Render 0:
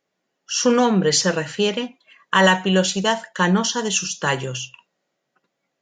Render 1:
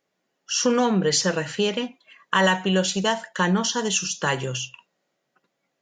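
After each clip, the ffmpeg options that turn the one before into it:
ffmpeg -i in.wav -af "acompressor=threshold=-23dB:ratio=1.5" out.wav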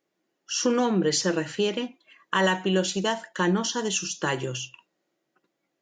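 ffmpeg -i in.wav -af "equalizer=frequency=330:width_type=o:width=0.32:gain=12,volume=-4dB" out.wav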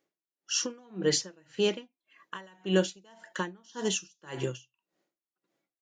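ffmpeg -i in.wav -af "aeval=exprs='val(0)*pow(10,-33*(0.5-0.5*cos(2*PI*1.8*n/s))/20)':channel_layout=same" out.wav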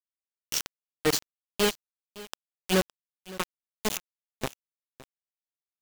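ffmpeg -i in.wav -af "acrusher=bits=3:mix=0:aa=0.000001,aecho=1:1:563:0.112" out.wav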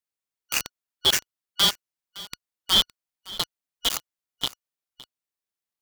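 ffmpeg -i in.wav -af "afftfilt=real='real(if(lt(b,272),68*(eq(floor(b/68),0)*1+eq(floor(b/68),1)*3+eq(floor(b/68),2)*0+eq(floor(b/68),3)*2)+mod(b,68),b),0)':imag='imag(if(lt(b,272),68*(eq(floor(b/68),0)*1+eq(floor(b/68),1)*3+eq(floor(b/68),2)*0+eq(floor(b/68),3)*2)+mod(b,68),b),0)':win_size=2048:overlap=0.75,volume=4dB" out.wav

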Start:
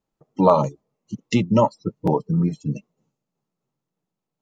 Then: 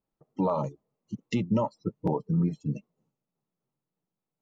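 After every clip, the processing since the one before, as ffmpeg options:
ffmpeg -i in.wav -af "highshelf=frequency=3600:gain=-8.5,alimiter=limit=-12dB:level=0:latency=1:release=127,volume=-5dB" out.wav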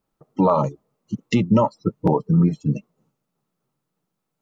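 ffmpeg -i in.wav -af "equalizer=frequency=1300:width_type=o:width=0.49:gain=5,volume=9dB" out.wav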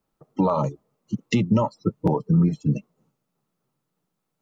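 ffmpeg -i in.wav -filter_complex "[0:a]acrossover=split=140|3000[link_01][link_02][link_03];[link_02]acompressor=threshold=-18dB:ratio=6[link_04];[link_01][link_04][link_03]amix=inputs=3:normalize=0" out.wav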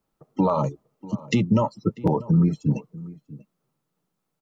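ffmpeg -i in.wav -filter_complex "[0:a]asplit=2[link_01][link_02];[link_02]adelay=641.4,volume=-19dB,highshelf=frequency=4000:gain=-14.4[link_03];[link_01][link_03]amix=inputs=2:normalize=0" out.wav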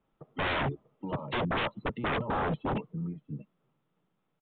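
ffmpeg -i in.wav -af "aeval=exprs='0.0501*(abs(mod(val(0)/0.0501+3,4)-2)-1)':channel_layout=same,aresample=8000,aresample=44100,volume=1.5dB" out.wav

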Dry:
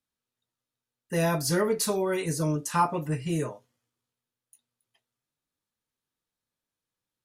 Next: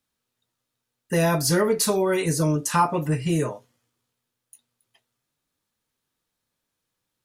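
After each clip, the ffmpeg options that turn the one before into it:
ffmpeg -i in.wav -af "acompressor=threshold=-31dB:ratio=1.5,volume=8dB" out.wav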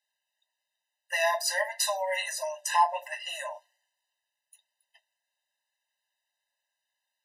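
ffmpeg -i in.wav -af "equalizer=frequency=2300:width=0.43:gain=11,afftfilt=real='re*eq(mod(floor(b*sr/1024/520),2),1)':imag='im*eq(mod(floor(b*sr/1024/520),2),1)':win_size=1024:overlap=0.75,volume=-6.5dB" out.wav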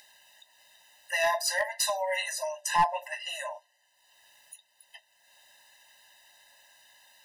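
ffmpeg -i in.wav -af "acompressor=mode=upward:threshold=-38dB:ratio=2.5,aeval=exprs='clip(val(0),-1,0.1)':channel_layout=same" out.wav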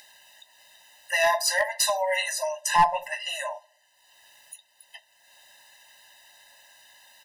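ffmpeg -i in.wav -filter_complex "[0:a]asplit=2[link_01][link_02];[link_02]adelay=67,lowpass=frequency=1400:poles=1,volume=-21.5dB,asplit=2[link_03][link_04];[link_04]adelay=67,lowpass=frequency=1400:poles=1,volume=0.53,asplit=2[link_05][link_06];[link_06]adelay=67,lowpass=frequency=1400:poles=1,volume=0.53,asplit=2[link_07][link_08];[link_08]adelay=67,lowpass=frequency=1400:poles=1,volume=0.53[link_09];[link_01][link_03][link_05][link_07][link_09]amix=inputs=5:normalize=0,volume=4.5dB" out.wav

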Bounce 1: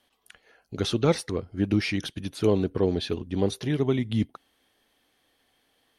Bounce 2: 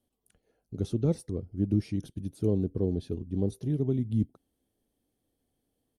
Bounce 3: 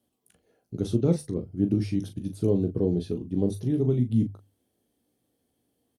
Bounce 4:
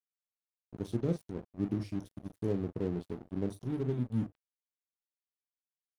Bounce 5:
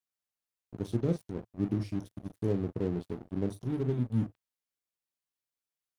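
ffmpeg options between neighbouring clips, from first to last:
ffmpeg -i in.wav -af "firequalizer=gain_entry='entry(110,0);entry(1000,-20);entry(1800,-25);entry(8500,-9)':delay=0.05:min_phase=1" out.wav
ffmpeg -i in.wav -filter_complex "[0:a]highpass=75,bandreject=frequency=50:width_type=h:width=6,bandreject=frequency=100:width_type=h:width=6,bandreject=frequency=150:width_type=h:width=6,asplit=2[link_01][link_02];[link_02]aecho=0:1:17|40:0.335|0.376[link_03];[link_01][link_03]amix=inputs=2:normalize=0,volume=4dB" out.wav
ffmpeg -i in.wav -af "aeval=exprs='sgn(val(0))*max(abs(val(0))-0.0133,0)':channel_layout=same,volume=-8dB" out.wav
ffmpeg -i in.wav -af "equalizer=frequency=110:width=3.9:gain=2.5,volume=2dB" out.wav

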